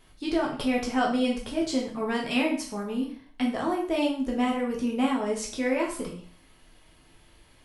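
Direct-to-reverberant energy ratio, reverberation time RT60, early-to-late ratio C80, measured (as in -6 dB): -2.0 dB, 0.45 s, 10.5 dB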